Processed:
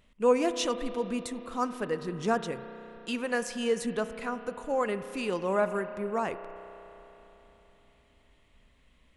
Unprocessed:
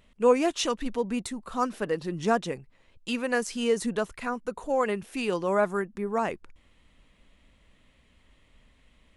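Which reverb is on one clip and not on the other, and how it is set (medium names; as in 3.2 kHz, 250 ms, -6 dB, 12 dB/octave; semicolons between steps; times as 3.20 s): spring tank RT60 3.7 s, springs 32 ms, chirp 70 ms, DRR 10.5 dB; trim -3 dB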